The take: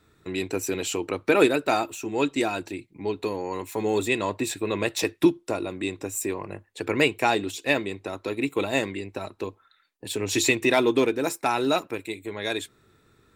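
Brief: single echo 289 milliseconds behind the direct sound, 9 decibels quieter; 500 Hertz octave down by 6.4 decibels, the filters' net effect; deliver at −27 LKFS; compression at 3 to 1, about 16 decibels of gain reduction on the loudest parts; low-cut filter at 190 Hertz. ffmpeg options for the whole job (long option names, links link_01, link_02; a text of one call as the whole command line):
ffmpeg -i in.wav -af "highpass=190,equalizer=frequency=500:width_type=o:gain=-8.5,acompressor=threshold=-40dB:ratio=3,aecho=1:1:289:0.355,volume=13dB" out.wav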